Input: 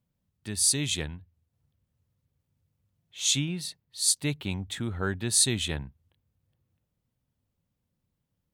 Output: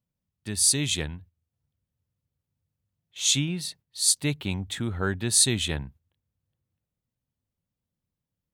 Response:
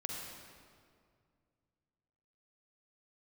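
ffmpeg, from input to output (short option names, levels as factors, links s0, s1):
-af "agate=range=0.355:threshold=0.00282:ratio=16:detection=peak,volume=1.33"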